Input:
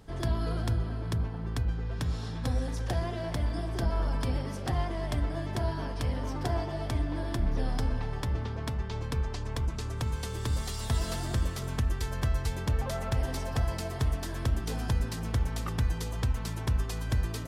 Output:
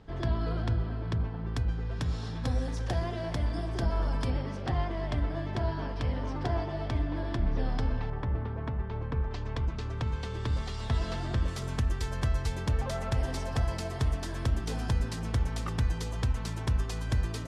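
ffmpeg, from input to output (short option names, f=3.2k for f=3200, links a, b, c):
-af "asetnsamples=n=441:p=0,asendcmd='1.54 lowpass f 7800;4.3 lowpass f 4300;8.1 lowpass f 1800;9.31 lowpass f 3900;11.48 lowpass f 8900',lowpass=4k"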